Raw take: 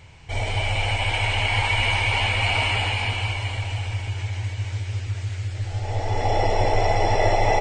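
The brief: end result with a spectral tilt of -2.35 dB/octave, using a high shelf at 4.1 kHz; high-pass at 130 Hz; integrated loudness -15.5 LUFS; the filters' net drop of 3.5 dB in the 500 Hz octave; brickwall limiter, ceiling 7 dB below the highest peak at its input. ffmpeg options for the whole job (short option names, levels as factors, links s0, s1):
-af "highpass=130,equalizer=f=500:t=o:g=-4.5,highshelf=f=4100:g=-8.5,volume=4.22,alimiter=limit=0.531:level=0:latency=1"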